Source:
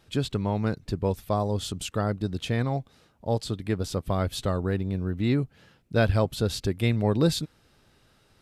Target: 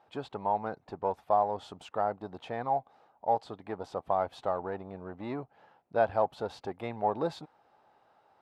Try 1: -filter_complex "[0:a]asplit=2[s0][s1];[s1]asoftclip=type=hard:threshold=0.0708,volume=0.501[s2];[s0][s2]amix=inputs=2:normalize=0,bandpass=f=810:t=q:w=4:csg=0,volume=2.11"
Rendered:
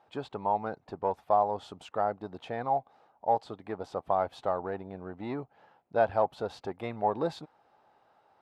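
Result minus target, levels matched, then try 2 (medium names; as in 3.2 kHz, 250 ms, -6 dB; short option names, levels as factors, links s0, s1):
hard clipper: distortion -5 dB
-filter_complex "[0:a]asplit=2[s0][s1];[s1]asoftclip=type=hard:threshold=0.0316,volume=0.501[s2];[s0][s2]amix=inputs=2:normalize=0,bandpass=f=810:t=q:w=4:csg=0,volume=2.11"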